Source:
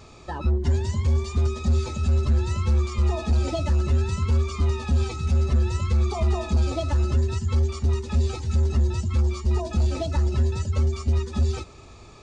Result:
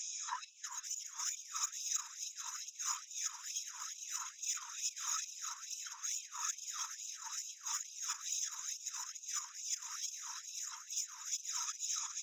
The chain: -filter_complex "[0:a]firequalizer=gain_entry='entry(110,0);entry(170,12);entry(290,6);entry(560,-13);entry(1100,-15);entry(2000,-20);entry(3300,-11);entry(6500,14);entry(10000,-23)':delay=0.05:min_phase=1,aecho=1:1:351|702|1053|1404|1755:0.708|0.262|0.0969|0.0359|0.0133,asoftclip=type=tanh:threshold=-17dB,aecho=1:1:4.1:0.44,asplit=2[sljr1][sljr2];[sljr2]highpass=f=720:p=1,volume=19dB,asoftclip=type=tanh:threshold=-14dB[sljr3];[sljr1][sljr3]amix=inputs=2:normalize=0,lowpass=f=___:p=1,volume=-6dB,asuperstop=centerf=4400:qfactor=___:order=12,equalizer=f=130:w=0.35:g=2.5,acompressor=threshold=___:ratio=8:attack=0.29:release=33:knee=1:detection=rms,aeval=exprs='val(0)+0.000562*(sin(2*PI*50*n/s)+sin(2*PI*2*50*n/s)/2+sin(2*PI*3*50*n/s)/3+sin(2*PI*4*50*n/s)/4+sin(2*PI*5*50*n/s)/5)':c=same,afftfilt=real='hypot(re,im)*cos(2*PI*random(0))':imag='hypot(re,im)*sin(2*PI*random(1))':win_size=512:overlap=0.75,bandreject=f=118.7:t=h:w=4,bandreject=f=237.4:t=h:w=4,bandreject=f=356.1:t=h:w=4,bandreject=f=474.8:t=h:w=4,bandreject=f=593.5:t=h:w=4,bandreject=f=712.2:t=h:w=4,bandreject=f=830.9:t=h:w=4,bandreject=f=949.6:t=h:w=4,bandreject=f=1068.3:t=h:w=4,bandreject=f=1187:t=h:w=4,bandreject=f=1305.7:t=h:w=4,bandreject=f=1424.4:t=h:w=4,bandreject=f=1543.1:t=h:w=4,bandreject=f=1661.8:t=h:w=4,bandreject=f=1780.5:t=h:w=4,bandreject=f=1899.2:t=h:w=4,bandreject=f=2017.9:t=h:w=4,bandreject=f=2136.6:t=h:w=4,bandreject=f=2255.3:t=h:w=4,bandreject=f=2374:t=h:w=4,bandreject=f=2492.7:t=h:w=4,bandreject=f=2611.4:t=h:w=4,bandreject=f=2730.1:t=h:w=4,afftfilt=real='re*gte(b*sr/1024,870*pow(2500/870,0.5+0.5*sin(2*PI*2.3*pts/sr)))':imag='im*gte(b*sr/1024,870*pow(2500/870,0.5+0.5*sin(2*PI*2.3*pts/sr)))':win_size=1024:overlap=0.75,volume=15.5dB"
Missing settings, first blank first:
1100, 4.6, -30dB